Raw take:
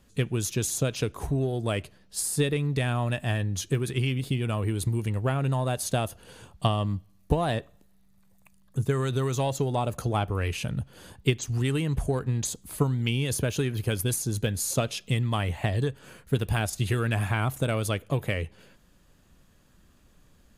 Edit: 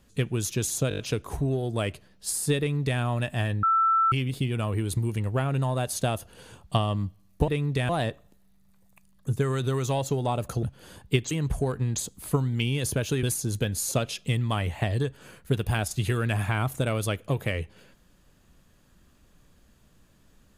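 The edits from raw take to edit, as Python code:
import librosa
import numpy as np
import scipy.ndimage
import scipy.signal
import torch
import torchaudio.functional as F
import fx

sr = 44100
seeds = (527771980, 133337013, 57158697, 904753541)

y = fx.edit(x, sr, fx.stutter(start_s=0.89, slice_s=0.02, count=6),
    fx.duplicate(start_s=2.49, length_s=0.41, to_s=7.38),
    fx.bleep(start_s=3.53, length_s=0.49, hz=1330.0, db=-18.5),
    fx.cut(start_s=10.12, length_s=0.65),
    fx.cut(start_s=11.45, length_s=0.33),
    fx.cut(start_s=13.7, length_s=0.35), tone=tone)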